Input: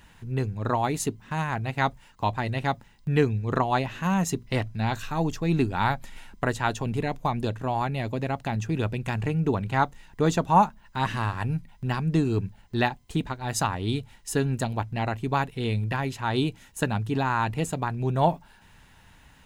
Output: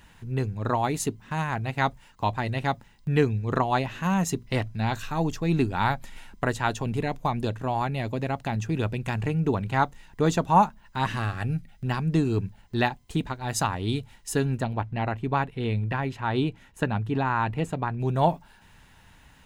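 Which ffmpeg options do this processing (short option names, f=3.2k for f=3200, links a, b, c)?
-filter_complex "[0:a]asettb=1/sr,asplit=3[a][b][c];[a]atrim=end=11.194[d];[b]atrim=start=11.19:end=11.86,asetpts=PTS-STARTPTS,afade=t=in:d=0.004:c=qsin,afade=t=out:st=0.666:d=0.004:c=qsin,asuperstop=centerf=970:order=4:qfactor=3.7[e];[c]atrim=start=11.856[f];[d][e]acrossfade=d=0.004:c1=hsin:c2=qsin[g];[g][f]acrossfade=d=0.004:c1=qsin:c2=hsin,asettb=1/sr,asplit=3[h][i][j];[h]atrim=end=14.574[k];[i]atrim=start=14.57:end=18,asetpts=PTS-STARTPTS,afade=t=in:d=0.004:c=qsin,afade=t=out:st=3.426:d=0.004:c=qsin,bass=f=250:g=0,treble=f=4k:g=-12[l];[j]atrim=start=17.996[m];[k][l]acrossfade=d=0.004:c1=hsin:c2=qsin[n];[n][m]acrossfade=d=0.004:c1=qsin:c2=hsin"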